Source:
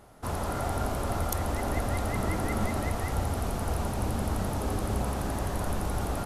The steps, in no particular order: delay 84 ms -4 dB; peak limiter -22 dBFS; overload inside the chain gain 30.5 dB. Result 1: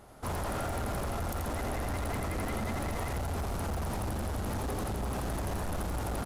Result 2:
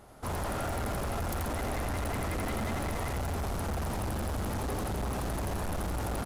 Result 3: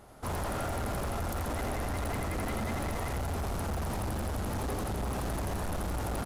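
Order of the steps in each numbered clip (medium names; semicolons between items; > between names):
delay > peak limiter > overload inside the chain; delay > overload inside the chain > peak limiter; peak limiter > delay > overload inside the chain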